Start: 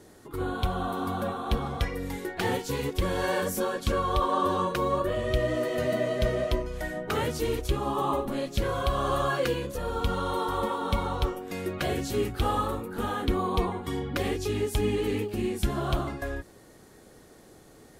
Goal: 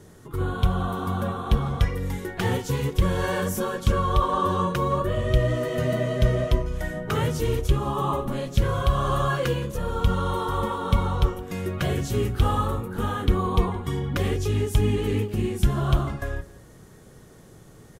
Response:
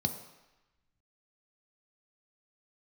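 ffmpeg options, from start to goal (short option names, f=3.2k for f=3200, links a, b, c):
-filter_complex "[0:a]lowshelf=f=200:g=5.5,asplit=2[a][b];[b]adelay=169.1,volume=-21dB,highshelf=f=4k:g=-3.8[c];[a][c]amix=inputs=2:normalize=0,asplit=2[d][e];[1:a]atrim=start_sample=2205[f];[e][f]afir=irnorm=-1:irlink=0,volume=-17.5dB[g];[d][g]amix=inputs=2:normalize=0,volume=2dB"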